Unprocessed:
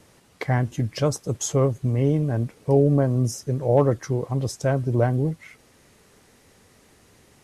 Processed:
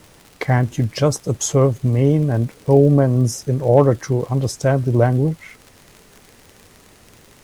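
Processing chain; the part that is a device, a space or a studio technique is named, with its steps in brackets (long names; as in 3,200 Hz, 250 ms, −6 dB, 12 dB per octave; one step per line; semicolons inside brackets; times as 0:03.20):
vinyl LP (surface crackle 59 per second −36 dBFS; pink noise bed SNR 36 dB)
level +5.5 dB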